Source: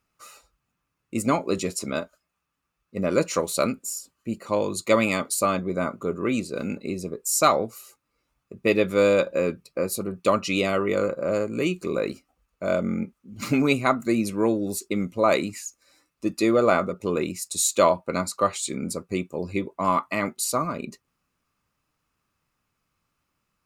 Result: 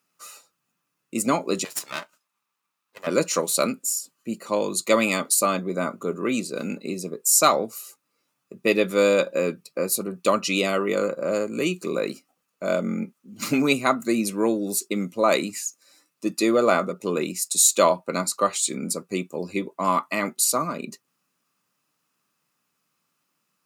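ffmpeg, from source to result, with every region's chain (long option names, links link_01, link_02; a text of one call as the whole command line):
ffmpeg -i in.wav -filter_complex "[0:a]asettb=1/sr,asplit=3[link_01][link_02][link_03];[link_01]atrim=end=1.644[link_04];[link_02]atrim=start=1.64:end=3.07,asetpts=PTS-STARTPTS,afade=type=in:duration=0.004:curve=qsin,afade=type=out:start_time=1.426:duration=0.004:curve=qsin,deesser=0.25,highpass=frequency=940:width_type=q:width=2.5,aeval=exprs='max(val(0),0)':channel_layout=same[link_05];[link_03]atrim=start=3.066[link_06];[link_04][link_05]acrossfade=duration=0.004:curve1=hsin:curve2=qsin[link_07];[link_07][link_06]acrossfade=duration=0.004:curve1=qsin:curve2=hsin,highpass=frequency=150:width=0.5412,highpass=frequency=150:width=1.3066,highshelf=frequency=3800:gain=7.5,bandreject=frequency=2200:width=26" out.wav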